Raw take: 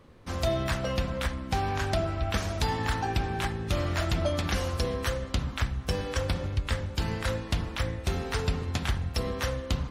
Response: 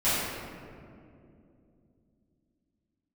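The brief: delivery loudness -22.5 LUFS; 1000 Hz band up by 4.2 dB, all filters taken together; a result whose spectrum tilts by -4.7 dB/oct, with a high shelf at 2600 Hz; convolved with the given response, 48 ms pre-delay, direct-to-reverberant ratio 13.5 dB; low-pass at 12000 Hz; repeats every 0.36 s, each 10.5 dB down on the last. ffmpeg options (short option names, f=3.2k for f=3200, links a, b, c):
-filter_complex "[0:a]lowpass=12k,equalizer=f=1k:t=o:g=5,highshelf=f=2.6k:g=3.5,aecho=1:1:360|720|1080:0.299|0.0896|0.0269,asplit=2[a][b];[1:a]atrim=start_sample=2205,adelay=48[c];[b][c]afir=irnorm=-1:irlink=0,volume=-28dB[d];[a][d]amix=inputs=2:normalize=0,volume=6dB"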